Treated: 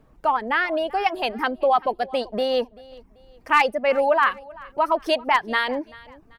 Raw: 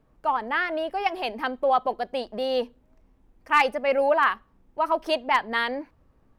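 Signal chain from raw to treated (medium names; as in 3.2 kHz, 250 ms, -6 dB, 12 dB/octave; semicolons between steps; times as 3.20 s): reverb removal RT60 0.62 s; in parallel at +2.5 dB: compression, threshold -30 dBFS, peak gain reduction 14 dB; on the sum: feedback delay 387 ms, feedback 35%, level -22 dB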